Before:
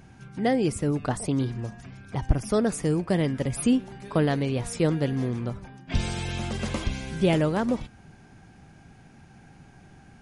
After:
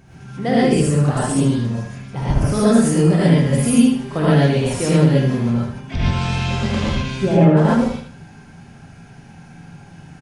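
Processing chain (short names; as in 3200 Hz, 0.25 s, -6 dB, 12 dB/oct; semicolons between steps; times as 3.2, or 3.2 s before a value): 5.78–7.57 treble ducked by the level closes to 1200 Hz, closed at -18 dBFS; feedback echo 77 ms, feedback 34%, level -7 dB; non-linear reverb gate 0.16 s rising, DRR -8 dB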